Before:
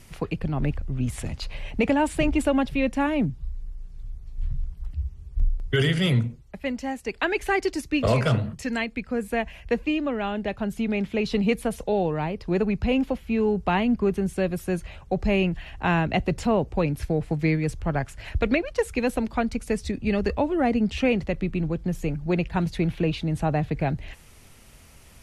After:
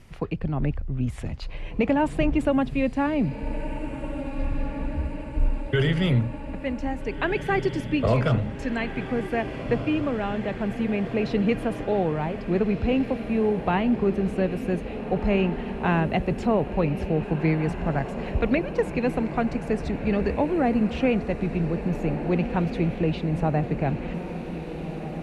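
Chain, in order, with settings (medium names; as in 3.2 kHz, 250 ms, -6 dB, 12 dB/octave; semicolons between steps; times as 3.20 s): low-pass 2.2 kHz 6 dB/octave; echo that smears into a reverb 1719 ms, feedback 67%, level -10 dB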